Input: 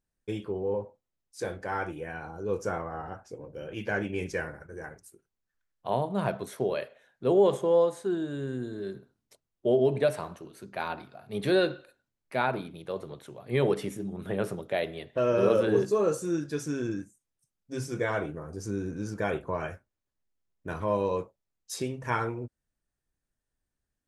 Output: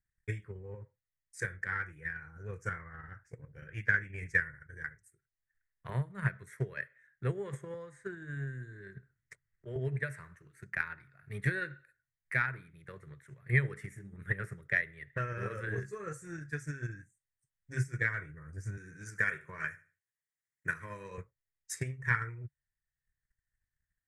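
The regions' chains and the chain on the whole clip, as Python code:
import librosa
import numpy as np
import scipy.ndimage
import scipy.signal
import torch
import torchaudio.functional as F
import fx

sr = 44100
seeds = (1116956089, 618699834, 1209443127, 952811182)

y = fx.chain(x, sr, fx.lowpass(hz=8300.0, slope=12),
    fx.auto_swell(attack_ms=193.0),
    fx.band_squash(depth_pct=40), at=(7.74, 9.76))
y = fx.chain(y, sr, fx.highpass(hz=170.0, slope=12),
    fx.high_shelf(hz=3100.0, db=9.5),
    fx.echo_feedback(ms=76, feedback_pct=29, wet_db=-15), at=(18.77, 21.18))
y = fx.curve_eq(y, sr, hz=(140.0, 230.0, 450.0, 740.0, 1900.0, 2900.0, 4200.0, 8000.0, 13000.0), db=(0, -22, -18, -29, 6, -20, -21, -7, -16))
y = fx.transient(y, sr, attack_db=11, sustain_db=-2)
y = fx.low_shelf(y, sr, hz=150.0, db=-5.0)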